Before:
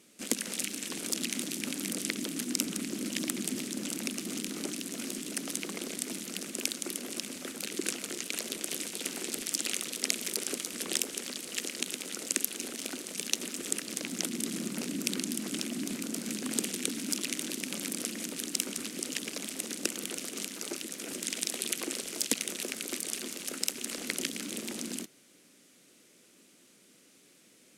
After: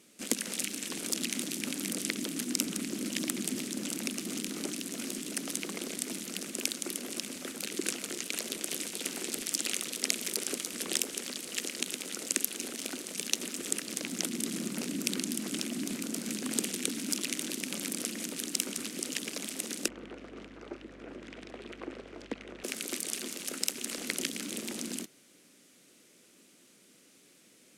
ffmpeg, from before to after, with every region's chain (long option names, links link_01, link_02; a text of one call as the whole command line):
ffmpeg -i in.wav -filter_complex "[0:a]asettb=1/sr,asplit=3[link_01][link_02][link_03];[link_01]atrim=end=19.884[link_04];[link_02]atrim=start=19.88:end=22.64,asetpts=PTS-STARTPTS,afade=type=in:duration=0.004:curve=qsin,afade=type=out:start_time=2.756:duration=0.004:curve=qsin,lowshelf=frequency=170:gain=-12,aeval=exprs='val(0)+0.00141*(sin(2*PI*50*n/s)+sin(2*PI*2*50*n/s)/2+sin(2*PI*3*50*n/s)/3+sin(2*PI*4*50*n/s)/4+sin(2*PI*5*50*n/s)/5)':channel_layout=same,lowpass=1400[link_05];[link_03]atrim=start=22.636[link_06];[link_04][link_05]acrossfade=duration=0.004:curve1=hsin:curve2=qsin[link_07];[link_07][link_06]acrossfade=duration=0.004:curve1=qsin:curve2=hsin" out.wav